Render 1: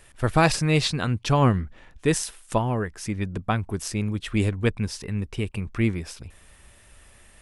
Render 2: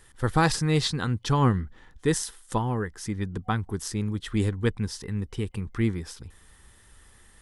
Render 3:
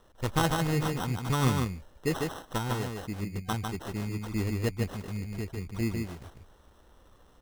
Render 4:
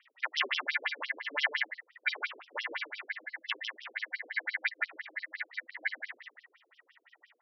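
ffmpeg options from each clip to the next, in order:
ffmpeg -i in.wav -af "superequalizer=8b=0.398:12b=0.447,volume=-2dB" out.wav
ffmpeg -i in.wav -filter_complex "[0:a]acrusher=samples=19:mix=1:aa=0.000001,asplit=2[link_01][link_02];[link_02]aecho=0:1:150:0.631[link_03];[link_01][link_03]amix=inputs=2:normalize=0,volume=-5.5dB" out.wav
ffmpeg -i in.wav -af "aeval=exprs='val(0)*sin(2*PI*1900*n/s)':channel_layout=same,afftfilt=real='re*between(b*sr/1024,340*pow(4300/340,0.5+0.5*sin(2*PI*5.8*pts/sr))/1.41,340*pow(4300/340,0.5+0.5*sin(2*PI*5.8*pts/sr))*1.41)':imag='im*between(b*sr/1024,340*pow(4300/340,0.5+0.5*sin(2*PI*5.8*pts/sr))/1.41,340*pow(4300/340,0.5+0.5*sin(2*PI*5.8*pts/sr))*1.41)':win_size=1024:overlap=0.75,volume=5dB" out.wav

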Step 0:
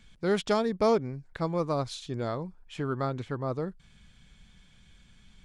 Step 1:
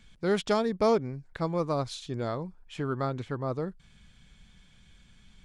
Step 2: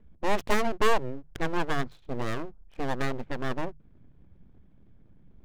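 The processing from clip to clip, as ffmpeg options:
ffmpeg -i in.wav -af anull out.wav
ffmpeg -i in.wav -af "adynamicsmooth=sensitivity=5.5:basefreq=540,aeval=exprs='abs(val(0))':channel_layout=same,bandreject=frequency=50:width_type=h:width=6,bandreject=frequency=100:width_type=h:width=6,bandreject=frequency=150:width_type=h:width=6,volume=4dB" out.wav

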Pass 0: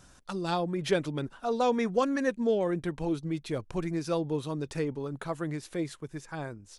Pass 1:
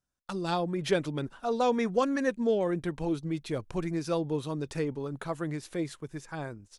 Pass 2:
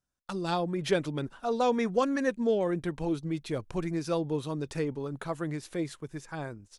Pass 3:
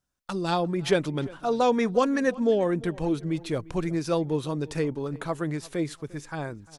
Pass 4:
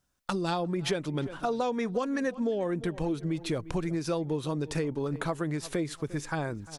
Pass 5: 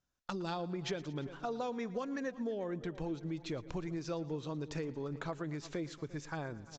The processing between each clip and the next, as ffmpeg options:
ffmpeg -i in.wav -af "agate=range=-31dB:threshold=-50dB:ratio=16:detection=peak" out.wav
ffmpeg -i in.wav -af anull out.wav
ffmpeg -i in.wav -filter_complex "[0:a]asplit=2[link_01][link_02];[link_02]adelay=349,lowpass=frequency=3500:poles=1,volume=-20.5dB,asplit=2[link_03][link_04];[link_04]adelay=349,lowpass=frequency=3500:poles=1,volume=0.32[link_05];[link_01][link_03][link_05]amix=inputs=3:normalize=0,volume=4dB" out.wav
ffmpeg -i in.wav -af "acompressor=threshold=-33dB:ratio=6,volume=5.5dB" out.wav
ffmpeg -i in.wav -af "aecho=1:1:114|228|342|456|570:0.119|0.0701|0.0414|0.0244|0.0144,aresample=16000,aresample=44100,volume=-8.5dB" out.wav

